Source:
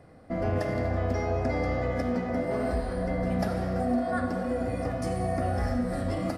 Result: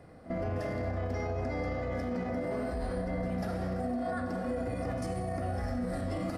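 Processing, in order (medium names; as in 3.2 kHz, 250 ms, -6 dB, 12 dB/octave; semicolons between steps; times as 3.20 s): peak limiter -26.5 dBFS, peak gain reduction 10 dB; pre-echo 44 ms -14.5 dB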